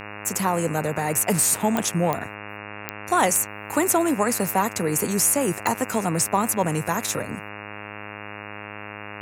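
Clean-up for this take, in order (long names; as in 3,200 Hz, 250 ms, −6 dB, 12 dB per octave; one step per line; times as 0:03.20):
click removal
hum removal 103.8 Hz, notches 27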